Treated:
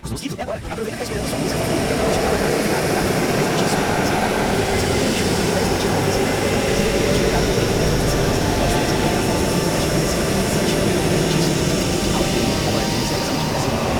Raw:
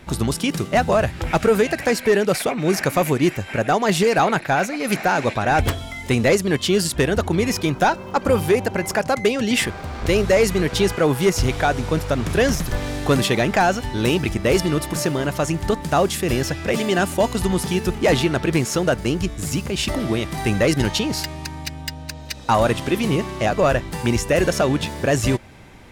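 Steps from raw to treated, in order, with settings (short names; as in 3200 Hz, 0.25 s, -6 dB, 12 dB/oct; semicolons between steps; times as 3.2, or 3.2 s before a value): dynamic EQ 5500 Hz, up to +5 dB, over -42 dBFS, Q 3.8; compressor 16:1, threshold -18 dBFS, peak gain reduction 7.5 dB; overloaded stage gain 18.5 dB; plain phase-vocoder stretch 0.54×; bloom reverb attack 1.69 s, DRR -7.5 dB; gain +1.5 dB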